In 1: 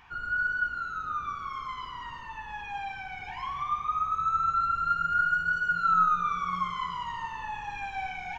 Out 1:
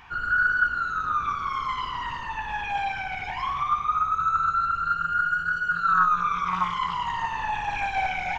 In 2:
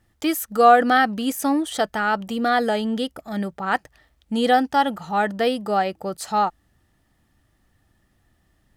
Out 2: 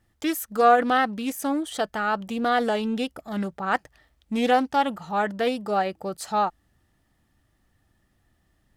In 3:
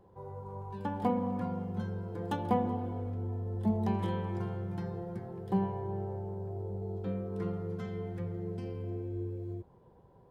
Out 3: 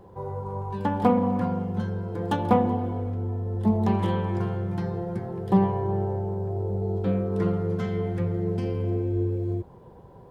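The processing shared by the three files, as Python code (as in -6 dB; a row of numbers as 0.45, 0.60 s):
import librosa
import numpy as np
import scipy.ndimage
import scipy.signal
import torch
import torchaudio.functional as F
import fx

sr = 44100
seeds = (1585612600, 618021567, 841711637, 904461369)

y = fx.rider(x, sr, range_db=4, speed_s=2.0)
y = fx.doppler_dist(y, sr, depth_ms=0.19)
y = y * 10.0 ** (-26 / 20.0) / np.sqrt(np.mean(np.square(y)))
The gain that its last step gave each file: +4.5, -4.5, +8.5 dB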